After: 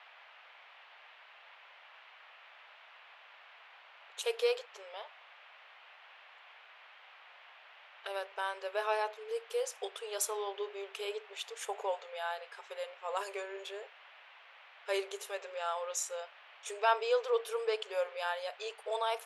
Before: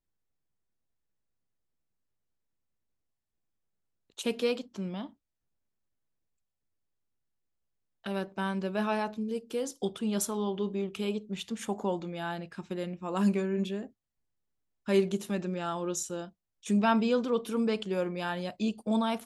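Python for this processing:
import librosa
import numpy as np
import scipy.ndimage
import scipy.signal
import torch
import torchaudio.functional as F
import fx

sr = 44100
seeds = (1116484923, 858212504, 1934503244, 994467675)

y = fx.brickwall_highpass(x, sr, low_hz=400.0)
y = fx.dmg_noise_band(y, sr, seeds[0], low_hz=610.0, high_hz=3000.0, level_db=-56.0)
y = y * 10.0 ** (-1.0 / 20.0)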